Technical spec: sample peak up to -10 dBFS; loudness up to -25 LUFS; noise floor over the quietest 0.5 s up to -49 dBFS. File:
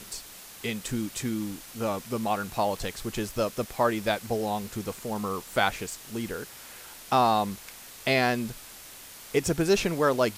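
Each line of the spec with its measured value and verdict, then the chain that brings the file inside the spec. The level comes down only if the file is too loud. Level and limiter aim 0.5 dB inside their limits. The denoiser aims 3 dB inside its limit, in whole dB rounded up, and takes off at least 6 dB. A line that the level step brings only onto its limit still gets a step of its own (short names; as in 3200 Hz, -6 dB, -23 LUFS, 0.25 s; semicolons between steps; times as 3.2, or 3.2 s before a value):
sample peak -8.5 dBFS: fail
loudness -28.5 LUFS: OK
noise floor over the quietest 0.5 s -46 dBFS: fail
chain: denoiser 6 dB, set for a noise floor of -46 dBFS; limiter -10.5 dBFS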